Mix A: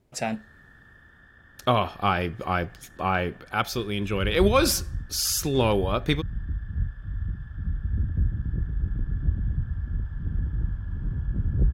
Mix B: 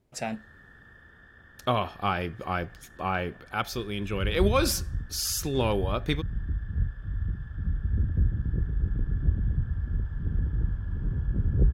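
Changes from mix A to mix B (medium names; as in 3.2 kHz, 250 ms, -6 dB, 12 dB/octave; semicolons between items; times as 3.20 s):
speech -4.0 dB; background: add peaking EQ 440 Hz +5.5 dB 0.61 oct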